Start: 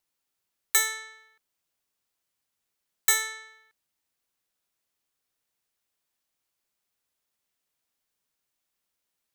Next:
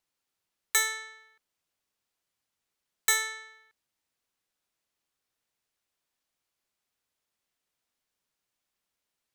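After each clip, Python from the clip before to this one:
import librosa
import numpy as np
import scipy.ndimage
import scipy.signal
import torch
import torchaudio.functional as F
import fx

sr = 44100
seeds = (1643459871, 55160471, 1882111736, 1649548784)

y = fx.high_shelf(x, sr, hz=9800.0, db=-7.5)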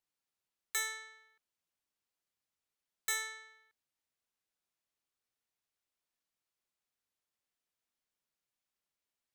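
y = 10.0 ** (-19.5 / 20.0) * np.tanh(x / 10.0 ** (-19.5 / 20.0))
y = F.gain(torch.from_numpy(y), -7.5).numpy()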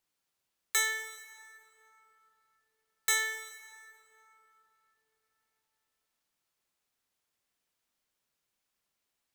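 y = fx.rev_plate(x, sr, seeds[0], rt60_s=3.7, hf_ratio=0.5, predelay_ms=0, drr_db=8.5)
y = F.gain(torch.from_numpy(y), 6.5).numpy()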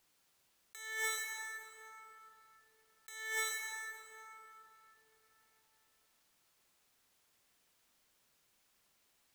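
y = fx.over_compress(x, sr, threshold_db=-43.0, ratio=-1.0)
y = F.gain(torch.from_numpy(y), 1.5).numpy()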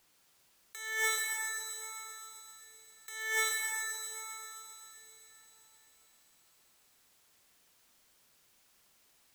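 y = fx.echo_wet_highpass(x, sr, ms=131, feedback_pct=82, hz=4300.0, wet_db=-7.5)
y = F.gain(torch.from_numpy(y), 5.5).numpy()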